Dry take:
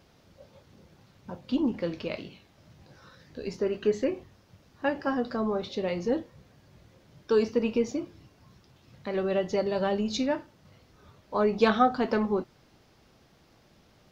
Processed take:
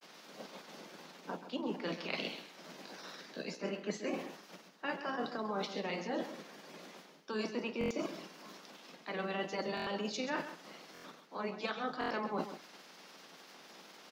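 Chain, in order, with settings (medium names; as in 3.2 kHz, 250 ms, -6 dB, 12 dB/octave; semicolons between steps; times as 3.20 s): spectral peaks clipped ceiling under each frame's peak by 16 dB; reverse; compression 16:1, threshold -39 dBFS, peak gain reduction 23.5 dB; reverse; granulator 100 ms, spray 14 ms, pitch spread up and down by 0 st; steep high-pass 160 Hz 96 dB/octave; delay 132 ms -11 dB; buffer glitch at 7.79/9.75/10.93/11.99 s, samples 1024, times 4; trim +6 dB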